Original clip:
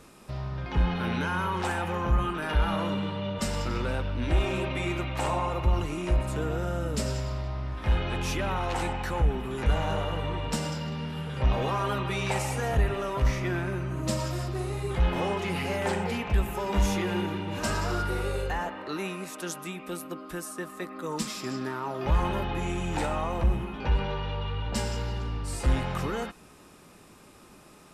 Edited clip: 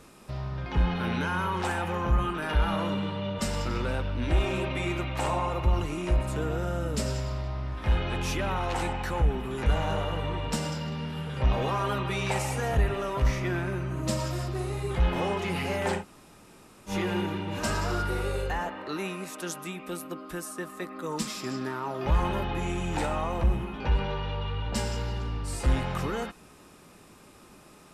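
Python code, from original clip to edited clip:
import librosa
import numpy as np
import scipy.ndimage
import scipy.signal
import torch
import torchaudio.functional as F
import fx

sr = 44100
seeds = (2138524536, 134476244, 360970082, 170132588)

y = fx.edit(x, sr, fx.room_tone_fill(start_s=16.0, length_s=0.91, crossfade_s=0.1), tone=tone)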